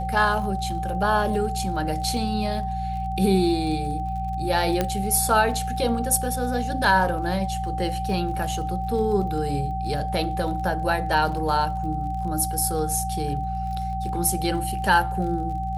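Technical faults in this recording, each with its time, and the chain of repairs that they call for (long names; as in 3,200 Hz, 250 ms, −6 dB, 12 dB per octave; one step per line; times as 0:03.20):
surface crackle 32 per second −34 dBFS
mains hum 60 Hz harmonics 3 −30 dBFS
whistle 770 Hz −28 dBFS
0:04.81: click −8 dBFS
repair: click removal
hum removal 60 Hz, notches 3
notch filter 770 Hz, Q 30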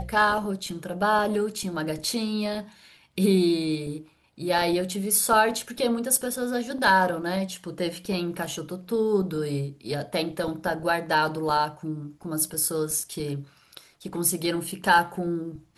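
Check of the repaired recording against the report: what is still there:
none of them is left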